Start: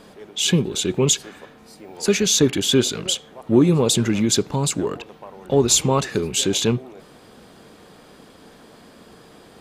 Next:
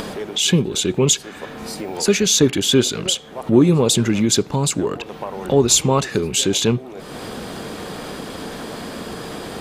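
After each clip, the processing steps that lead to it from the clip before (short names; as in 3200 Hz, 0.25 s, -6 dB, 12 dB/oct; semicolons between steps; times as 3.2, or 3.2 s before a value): upward compressor, threshold -19 dBFS; gain +2 dB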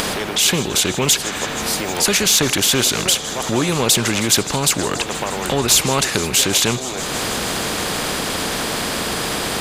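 added harmonics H 5 -42 dB, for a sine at -1 dBFS; thin delay 0.158 s, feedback 84%, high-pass 3900 Hz, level -24 dB; spectral compressor 2:1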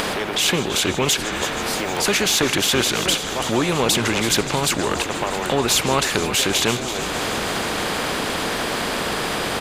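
tone controls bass -4 dB, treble -7 dB; on a send: frequency-shifting echo 0.334 s, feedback 44%, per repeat -66 Hz, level -10.5 dB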